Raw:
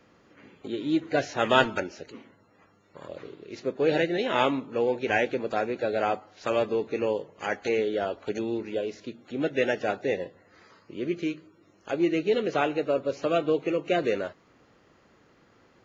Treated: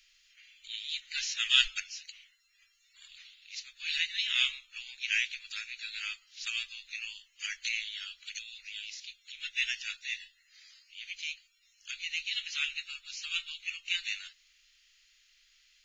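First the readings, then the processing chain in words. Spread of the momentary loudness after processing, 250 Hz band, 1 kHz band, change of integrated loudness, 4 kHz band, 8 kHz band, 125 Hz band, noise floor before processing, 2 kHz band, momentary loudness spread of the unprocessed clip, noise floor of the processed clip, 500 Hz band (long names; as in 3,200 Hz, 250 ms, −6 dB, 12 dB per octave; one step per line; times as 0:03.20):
16 LU, below −40 dB, −26.0 dB, −5.5 dB, +7.0 dB, can't be measured, below −35 dB, −61 dBFS, −1.5 dB, 14 LU, −69 dBFS, below −40 dB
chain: inverse Chebyshev band-stop filter 110–700 Hz, stop band 70 dB
level +8 dB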